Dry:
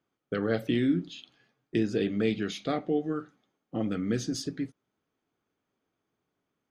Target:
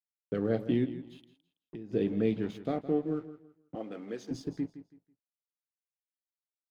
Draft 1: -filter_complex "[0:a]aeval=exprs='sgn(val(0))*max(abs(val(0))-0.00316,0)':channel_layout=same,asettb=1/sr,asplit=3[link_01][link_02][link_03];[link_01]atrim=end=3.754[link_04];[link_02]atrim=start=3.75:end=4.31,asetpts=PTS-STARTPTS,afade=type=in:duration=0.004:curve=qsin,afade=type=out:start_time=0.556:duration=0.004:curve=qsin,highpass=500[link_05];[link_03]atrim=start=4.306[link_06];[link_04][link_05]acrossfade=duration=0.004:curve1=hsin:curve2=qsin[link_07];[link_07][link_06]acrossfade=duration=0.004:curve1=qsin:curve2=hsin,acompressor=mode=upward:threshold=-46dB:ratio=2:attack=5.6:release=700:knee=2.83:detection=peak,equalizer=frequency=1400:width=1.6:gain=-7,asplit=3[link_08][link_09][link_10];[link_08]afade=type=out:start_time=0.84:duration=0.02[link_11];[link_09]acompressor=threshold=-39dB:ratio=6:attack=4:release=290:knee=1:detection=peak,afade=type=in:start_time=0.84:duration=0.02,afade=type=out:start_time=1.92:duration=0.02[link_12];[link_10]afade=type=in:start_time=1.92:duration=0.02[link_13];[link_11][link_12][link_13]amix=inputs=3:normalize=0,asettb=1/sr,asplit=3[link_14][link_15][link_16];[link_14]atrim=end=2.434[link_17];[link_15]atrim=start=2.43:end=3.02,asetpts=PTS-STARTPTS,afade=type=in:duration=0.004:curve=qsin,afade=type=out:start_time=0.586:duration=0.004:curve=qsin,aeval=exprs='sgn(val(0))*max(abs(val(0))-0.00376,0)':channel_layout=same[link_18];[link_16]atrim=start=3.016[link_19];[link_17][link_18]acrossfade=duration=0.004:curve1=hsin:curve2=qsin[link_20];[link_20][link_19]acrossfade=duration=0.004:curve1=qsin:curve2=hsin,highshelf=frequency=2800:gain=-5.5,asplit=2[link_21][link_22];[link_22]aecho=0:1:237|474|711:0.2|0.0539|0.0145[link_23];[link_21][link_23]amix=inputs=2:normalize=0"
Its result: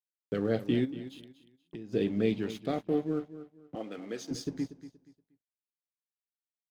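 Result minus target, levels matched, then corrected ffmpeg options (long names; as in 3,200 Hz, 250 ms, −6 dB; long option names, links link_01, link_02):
echo 73 ms late; 4,000 Hz band +6.5 dB
-filter_complex "[0:a]aeval=exprs='sgn(val(0))*max(abs(val(0))-0.00316,0)':channel_layout=same,asettb=1/sr,asplit=3[link_01][link_02][link_03];[link_01]atrim=end=3.754[link_04];[link_02]atrim=start=3.75:end=4.31,asetpts=PTS-STARTPTS,afade=type=in:duration=0.004:curve=qsin,afade=type=out:start_time=0.556:duration=0.004:curve=qsin,highpass=500[link_05];[link_03]atrim=start=4.306[link_06];[link_04][link_05]acrossfade=duration=0.004:curve1=hsin:curve2=qsin[link_07];[link_07][link_06]acrossfade=duration=0.004:curve1=qsin:curve2=hsin,acompressor=mode=upward:threshold=-46dB:ratio=2:attack=5.6:release=700:knee=2.83:detection=peak,equalizer=frequency=1400:width=1.6:gain=-7,asplit=3[link_08][link_09][link_10];[link_08]afade=type=out:start_time=0.84:duration=0.02[link_11];[link_09]acompressor=threshold=-39dB:ratio=6:attack=4:release=290:knee=1:detection=peak,afade=type=in:start_time=0.84:duration=0.02,afade=type=out:start_time=1.92:duration=0.02[link_12];[link_10]afade=type=in:start_time=1.92:duration=0.02[link_13];[link_11][link_12][link_13]amix=inputs=3:normalize=0,asettb=1/sr,asplit=3[link_14][link_15][link_16];[link_14]atrim=end=2.434[link_17];[link_15]atrim=start=2.43:end=3.02,asetpts=PTS-STARTPTS,afade=type=in:duration=0.004:curve=qsin,afade=type=out:start_time=0.586:duration=0.004:curve=qsin,aeval=exprs='sgn(val(0))*max(abs(val(0))-0.00376,0)':channel_layout=same[link_18];[link_16]atrim=start=3.016[link_19];[link_17][link_18]acrossfade=duration=0.004:curve1=hsin:curve2=qsin[link_20];[link_20][link_19]acrossfade=duration=0.004:curve1=qsin:curve2=hsin,highshelf=frequency=2800:gain=-16.5,asplit=2[link_21][link_22];[link_22]aecho=0:1:164|328|492:0.2|0.0539|0.0145[link_23];[link_21][link_23]amix=inputs=2:normalize=0"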